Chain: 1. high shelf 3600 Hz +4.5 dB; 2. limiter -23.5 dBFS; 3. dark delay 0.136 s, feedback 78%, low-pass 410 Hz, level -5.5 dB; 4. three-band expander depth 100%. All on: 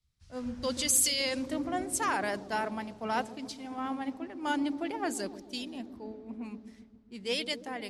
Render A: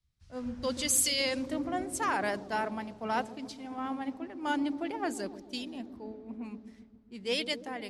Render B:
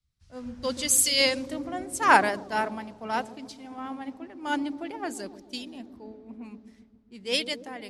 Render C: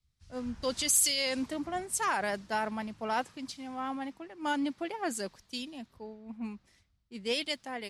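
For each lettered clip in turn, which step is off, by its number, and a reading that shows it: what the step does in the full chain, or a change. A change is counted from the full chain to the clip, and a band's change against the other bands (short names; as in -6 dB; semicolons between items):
1, 8 kHz band -2.0 dB; 2, crest factor change +5.5 dB; 3, 250 Hz band -1.5 dB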